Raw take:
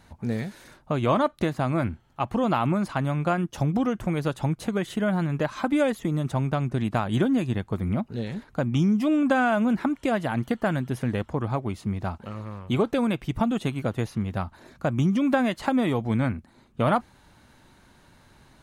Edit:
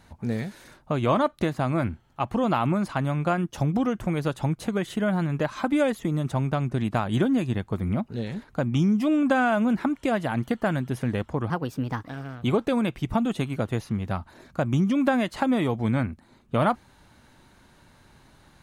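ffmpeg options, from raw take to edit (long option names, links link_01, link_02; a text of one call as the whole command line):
ffmpeg -i in.wav -filter_complex "[0:a]asplit=3[link_01][link_02][link_03];[link_01]atrim=end=11.504[link_04];[link_02]atrim=start=11.5:end=12.68,asetpts=PTS-STARTPTS,asetrate=56448,aresample=44100[link_05];[link_03]atrim=start=12.676[link_06];[link_04][link_05]acrossfade=duration=0.004:curve1=hsin:curve2=hsin[link_07];[link_07][link_06]acrossfade=duration=0.004:curve1=hsin:curve2=hsin" out.wav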